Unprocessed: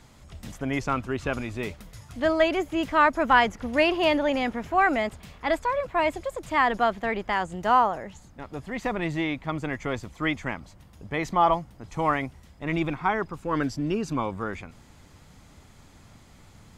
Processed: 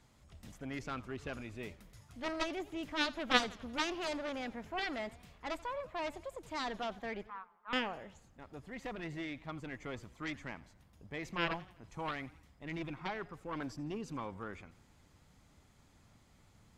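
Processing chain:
0:07.27–0:07.73: flat-topped band-pass 1,200 Hz, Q 3.1
harmonic generator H 2 −9 dB, 3 −7 dB, 7 −33 dB, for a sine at −6.5 dBFS
feedback echo with a swinging delay time 86 ms, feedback 50%, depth 161 cents, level −20 dB
level −6.5 dB

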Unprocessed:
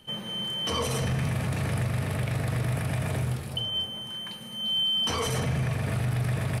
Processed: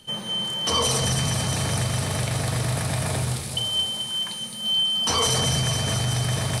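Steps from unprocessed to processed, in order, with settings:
flat-topped bell 6,100 Hz +9 dB
on a send: delay with a high-pass on its return 215 ms, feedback 78%, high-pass 3,500 Hz, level −4 dB
on the sum: dynamic equaliser 900 Hz, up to +5 dB, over −45 dBFS, Q 1.1
level +2 dB

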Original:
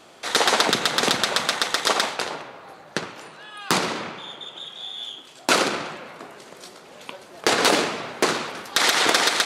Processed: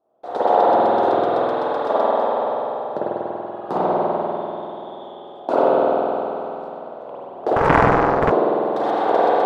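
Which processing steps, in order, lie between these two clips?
spring reverb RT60 3.3 s, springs 48 ms, chirp 55 ms, DRR −9 dB
noise gate with hold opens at −27 dBFS
drawn EQ curve 190 Hz 0 dB, 710 Hz +13 dB, 2,200 Hz −20 dB, 3,600 Hz −16 dB, 6,400 Hz −26 dB
0:07.56–0:08.32: highs frequency-modulated by the lows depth 0.96 ms
level −8.5 dB

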